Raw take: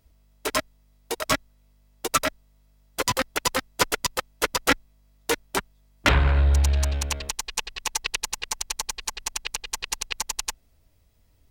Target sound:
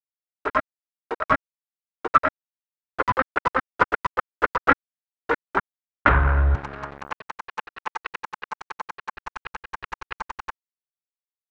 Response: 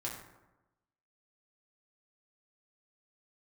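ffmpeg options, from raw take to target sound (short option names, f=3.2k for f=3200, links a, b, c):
-filter_complex "[0:a]asettb=1/sr,asplit=3[a][b][c];[a]atrim=end=6.554[d];[b]atrim=start=6.55:end=9.15,asetpts=PTS-STARTPTS,afade=t=in:d=0.004:c=qsin,afade=t=out:st=2.596:d=0.004:c=qsin,highpass=f=130:w=0.5412,highpass=f=130:w=1.3066[e];[c]atrim=start=9.146[f];[d][e]acrossfade=d=0.004:c1=hsin:c2=qsin[g];[g][f]acrossfade=d=0.004:c1=qsin:c2=hsin,aeval=exprs='val(0)*gte(abs(val(0)),0.0237)':c=same,lowpass=f=1.4k:t=q:w=2.5"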